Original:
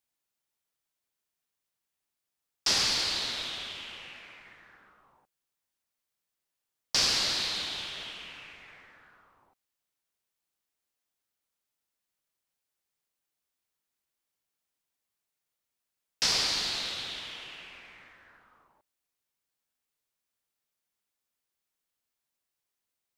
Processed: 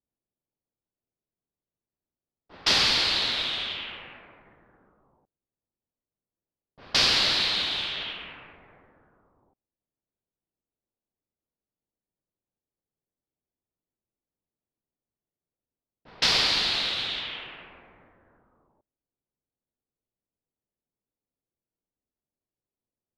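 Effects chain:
high shelf with overshoot 4,900 Hz −8 dB, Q 1.5
echo ahead of the sound 168 ms −18 dB
low-pass that shuts in the quiet parts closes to 440 Hz, open at −31.5 dBFS
level +6 dB

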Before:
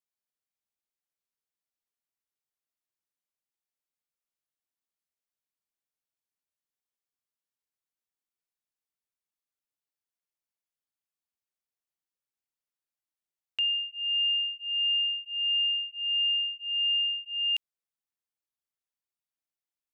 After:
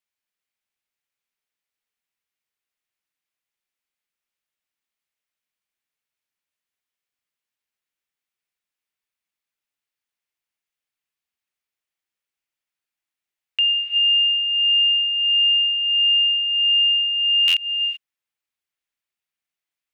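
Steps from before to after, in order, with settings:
parametric band 2,300 Hz +8.5 dB 1.5 octaves
reverb whose tail is shaped and stops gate 410 ms rising, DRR 7.5 dB
buffer that repeats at 0:17.47, samples 512, times 5
level +1.5 dB

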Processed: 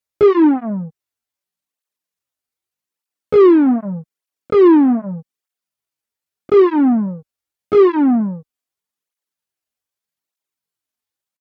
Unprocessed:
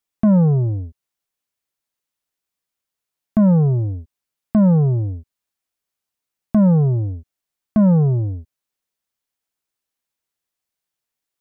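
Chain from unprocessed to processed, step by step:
harmonic generator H 3 −30 dB, 4 −23 dB, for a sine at −10 dBFS
pitch shifter +11.5 semitones
through-zero flanger with one copy inverted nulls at 0.82 Hz, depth 6.3 ms
level +5 dB

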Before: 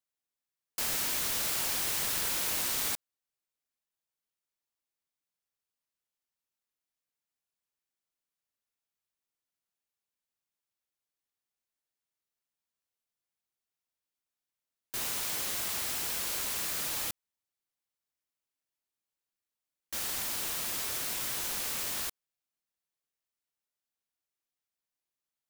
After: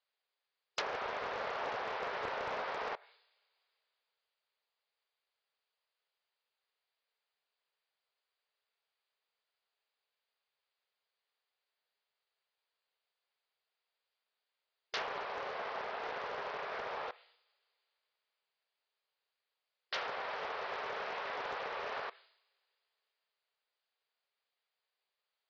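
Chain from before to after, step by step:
linear-phase brick-wall band-pass 380–5,000 Hz
coupled-rooms reverb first 0.66 s, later 3.3 s, from −27 dB, DRR 20 dB
treble cut that deepens with the level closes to 1,100 Hz, closed at −37 dBFS
highs frequency-modulated by the lows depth 0.29 ms
level +7.5 dB

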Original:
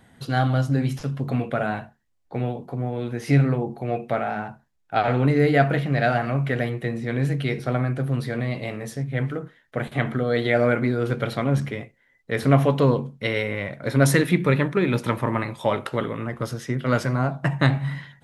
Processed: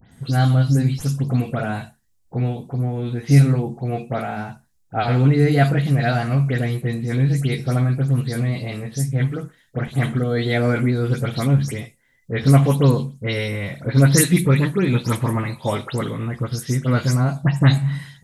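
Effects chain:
every frequency bin delayed by itself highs late, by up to 117 ms
bass and treble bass +8 dB, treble +12 dB
level −1 dB

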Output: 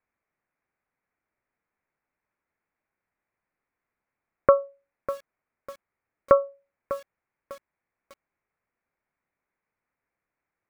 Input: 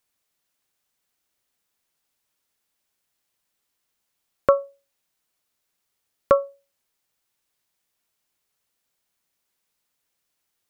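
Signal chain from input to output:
Butterworth low-pass 2,400 Hz 72 dB per octave
feedback echo at a low word length 599 ms, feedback 35%, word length 6 bits, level −13 dB

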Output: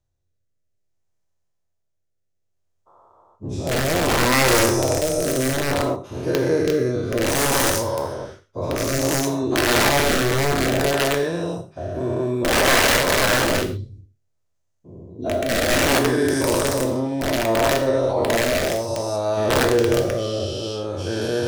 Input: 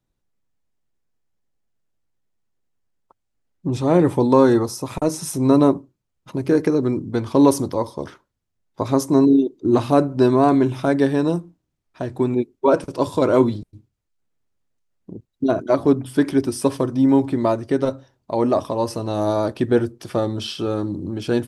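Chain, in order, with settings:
every bin's largest magnitude spread in time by 480 ms
graphic EQ with 15 bands 100 Hz +10 dB, 250 Hz −7 dB, 630 Hz +6 dB, 6,300 Hz +6 dB
wrap-around overflow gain 2.5 dB
rotating-speaker cabinet horn 0.6 Hz
reverb whose tail is shaped and stops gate 160 ms falling, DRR 5 dB
level −8 dB

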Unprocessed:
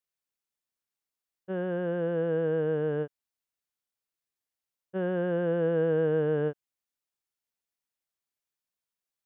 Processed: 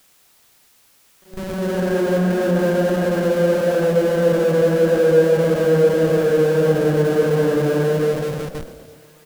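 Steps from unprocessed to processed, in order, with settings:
extreme stretch with random phases 4.1×, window 0.25 s, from 0:04.54
four-comb reverb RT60 2.4 s, combs from 29 ms, DRR 8.5 dB
in parallel at −9.5 dB: comparator with hysteresis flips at −41 dBFS
on the sum: bit reduction 10 bits
background noise white −63 dBFS
on a send: echo with shifted repeats 123 ms, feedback 59%, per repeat +35 Hz, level −15 dB
on the sum: level +7.5 dB

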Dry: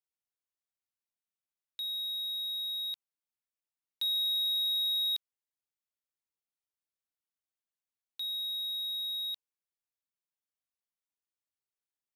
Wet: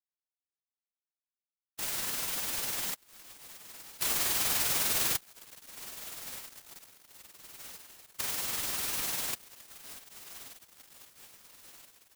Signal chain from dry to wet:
three sine waves on the formant tracks
feedback delay with all-pass diffusion 1,511 ms, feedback 50%, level −15.5 dB
short delay modulated by noise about 5,000 Hz, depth 0.21 ms
level +1.5 dB

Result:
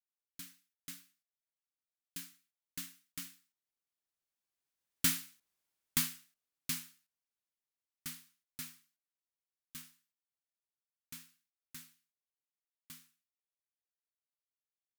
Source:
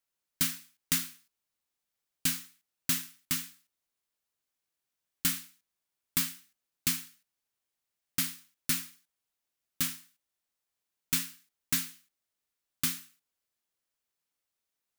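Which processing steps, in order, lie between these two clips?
source passing by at 0:05.41, 14 m/s, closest 6.8 metres
level +1 dB

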